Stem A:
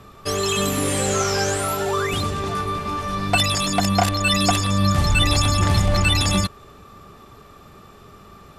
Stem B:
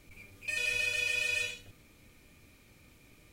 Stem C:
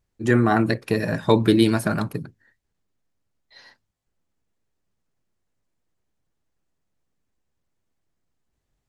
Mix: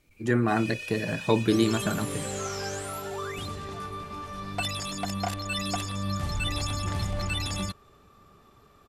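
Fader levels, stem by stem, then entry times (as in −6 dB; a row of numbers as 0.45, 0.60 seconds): −12.0, −7.5, −6.0 decibels; 1.25, 0.00, 0.00 seconds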